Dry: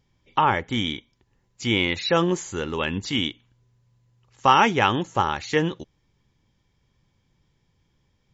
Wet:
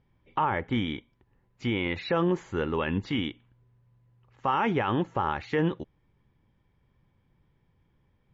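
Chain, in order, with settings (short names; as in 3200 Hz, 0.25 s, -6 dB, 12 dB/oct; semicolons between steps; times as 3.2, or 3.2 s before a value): limiter -15.5 dBFS, peak gain reduction 11.5 dB; LPF 2100 Hz 12 dB/oct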